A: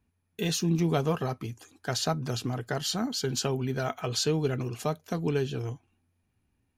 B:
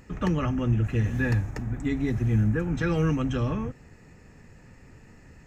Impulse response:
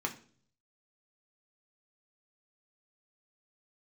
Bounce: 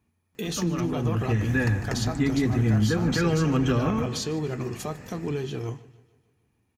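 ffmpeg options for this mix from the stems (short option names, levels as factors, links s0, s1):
-filter_complex "[0:a]alimiter=level_in=1.06:limit=0.0631:level=0:latency=1:release=155,volume=0.944,volume=1.06,asplit=3[s0][s1][s2];[s1]volume=0.447[s3];[s2]volume=0.126[s4];[1:a]dynaudnorm=f=350:g=5:m=6.31,adelay=350,volume=0.501,asplit=2[s5][s6];[s6]volume=0.211[s7];[2:a]atrim=start_sample=2205[s8];[s3][s8]afir=irnorm=-1:irlink=0[s9];[s4][s7]amix=inputs=2:normalize=0,aecho=0:1:150|300|450|600|750|900|1050|1200:1|0.52|0.27|0.141|0.0731|0.038|0.0198|0.0103[s10];[s0][s5][s9][s10]amix=inputs=4:normalize=0,highpass=f=110:p=1,alimiter=limit=0.211:level=0:latency=1:release=203"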